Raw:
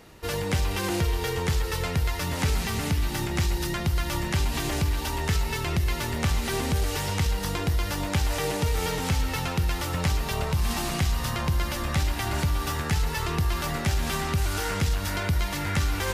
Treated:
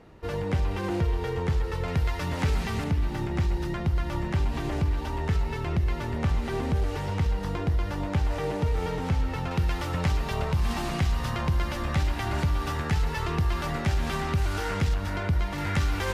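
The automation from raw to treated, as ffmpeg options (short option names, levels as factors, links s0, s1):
-af "asetnsamples=n=441:p=0,asendcmd='1.88 lowpass f 2300;2.84 lowpass f 1100;9.51 lowpass f 2600;14.94 lowpass f 1500;15.58 lowpass f 3600',lowpass=f=1100:p=1"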